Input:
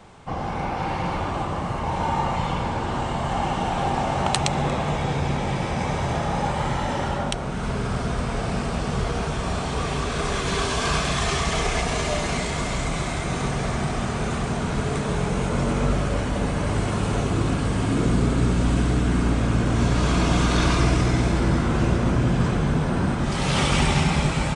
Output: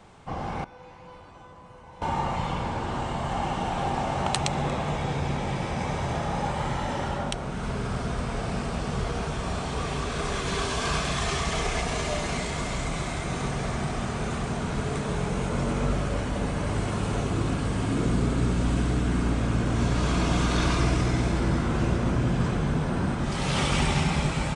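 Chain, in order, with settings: 0.64–2.02 s: feedback comb 500 Hz, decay 0.51 s, mix 90%; trim -4 dB

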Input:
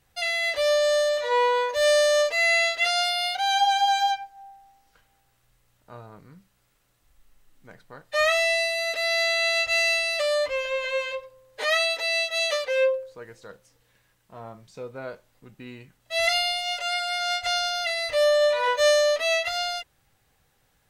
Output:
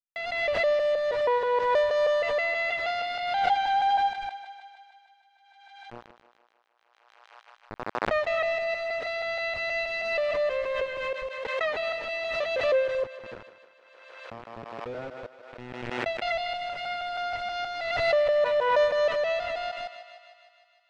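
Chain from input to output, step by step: time reversed locally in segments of 159 ms; bit crusher 6-bit; tape spacing loss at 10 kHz 37 dB; thinning echo 154 ms, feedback 69%, high-pass 380 Hz, level -11 dB; swell ahead of each attack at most 35 dB/s

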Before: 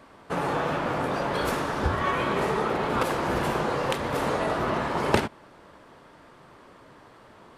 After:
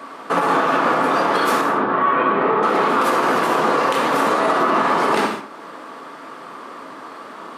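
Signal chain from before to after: 1.61–2.63 s: distance through air 460 m; gated-style reverb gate 230 ms falling, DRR 4 dB; in parallel at -3 dB: compression, threshold -40 dBFS, peak gain reduction 23 dB; on the sum: peaking EQ 1.2 kHz +7 dB 0.54 oct; peak limiter -15.5 dBFS, peak gain reduction 10.5 dB; high-pass 200 Hz 24 dB/octave; trim +7.5 dB

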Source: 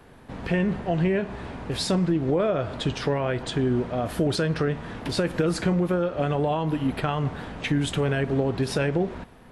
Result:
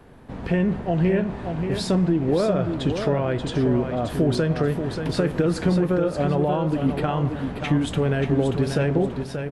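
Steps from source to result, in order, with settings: tilt shelf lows +3 dB; feedback delay 583 ms, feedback 29%, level -7 dB

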